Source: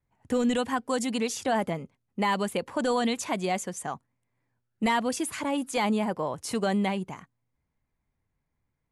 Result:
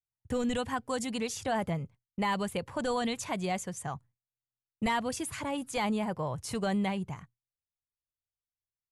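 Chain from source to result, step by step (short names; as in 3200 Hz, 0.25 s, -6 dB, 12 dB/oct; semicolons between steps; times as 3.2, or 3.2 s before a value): expander -47 dBFS; resonant low shelf 170 Hz +10.5 dB, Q 1.5; gain -4 dB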